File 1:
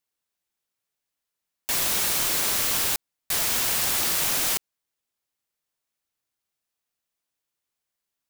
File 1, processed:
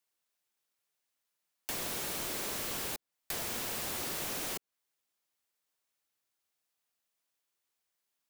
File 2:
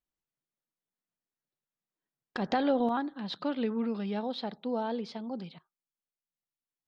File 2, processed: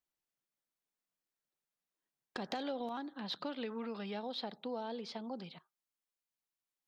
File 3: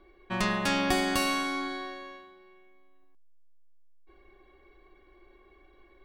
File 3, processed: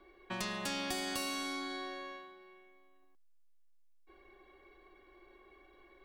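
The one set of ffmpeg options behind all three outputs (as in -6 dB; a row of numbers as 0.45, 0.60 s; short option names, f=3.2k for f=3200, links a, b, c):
-filter_complex "[0:a]acrossover=split=650[a][b];[a]lowshelf=f=200:g=-8.5[c];[b]asoftclip=type=tanh:threshold=-23dB[d];[c][d]amix=inputs=2:normalize=0,acrossover=split=570|3300[e][f][g];[e]acompressor=threshold=-42dB:ratio=4[h];[f]acompressor=threshold=-44dB:ratio=4[i];[g]acompressor=threshold=-39dB:ratio=4[j];[h][i][j]amix=inputs=3:normalize=0"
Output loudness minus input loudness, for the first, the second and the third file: -13.5, -9.0, -9.5 LU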